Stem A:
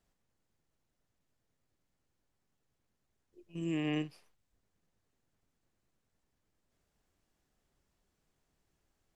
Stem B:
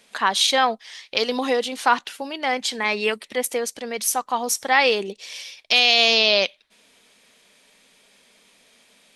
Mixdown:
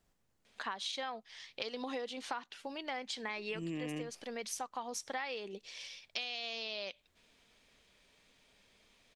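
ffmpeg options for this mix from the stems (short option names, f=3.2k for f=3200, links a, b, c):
-filter_complex "[0:a]volume=3dB[a];[1:a]lowpass=6.5k,adelay=450,volume=-11dB[b];[a][b]amix=inputs=2:normalize=0,acompressor=threshold=-36dB:ratio=10"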